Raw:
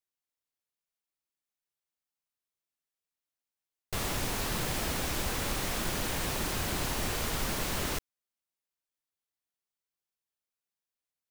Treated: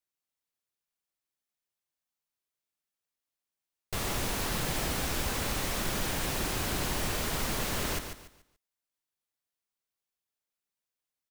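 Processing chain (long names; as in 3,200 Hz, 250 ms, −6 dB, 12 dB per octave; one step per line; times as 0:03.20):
repeating echo 144 ms, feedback 30%, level −8 dB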